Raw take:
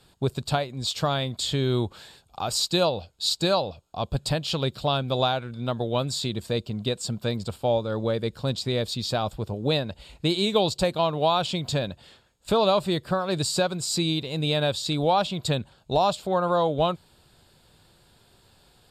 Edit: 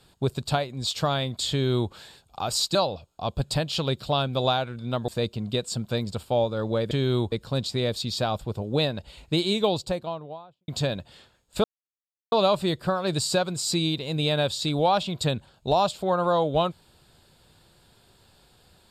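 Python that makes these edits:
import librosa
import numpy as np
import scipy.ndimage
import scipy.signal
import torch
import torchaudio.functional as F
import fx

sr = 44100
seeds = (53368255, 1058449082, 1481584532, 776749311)

y = fx.studio_fade_out(x, sr, start_s=10.3, length_s=1.3)
y = fx.edit(y, sr, fx.duplicate(start_s=1.51, length_s=0.41, to_s=8.24),
    fx.cut(start_s=2.75, length_s=0.75),
    fx.cut(start_s=5.83, length_s=0.58),
    fx.insert_silence(at_s=12.56, length_s=0.68), tone=tone)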